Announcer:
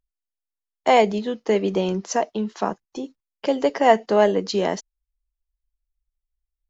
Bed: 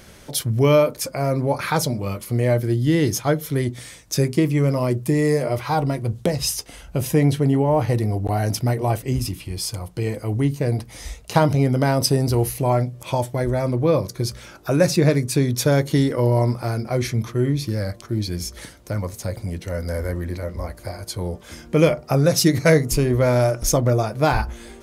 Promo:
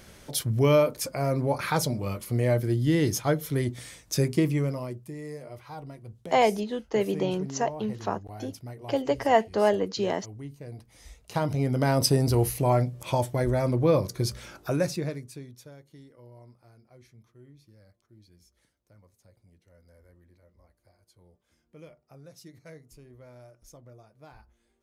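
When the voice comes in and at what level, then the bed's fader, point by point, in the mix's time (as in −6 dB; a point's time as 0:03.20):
5.45 s, −5.5 dB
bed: 0:04.50 −5 dB
0:05.10 −20 dB
0:10.70 −20 dB
0:11.98 −3.5 dB
0:14.57 −3.5 dB
0:15.79 −32.5 dB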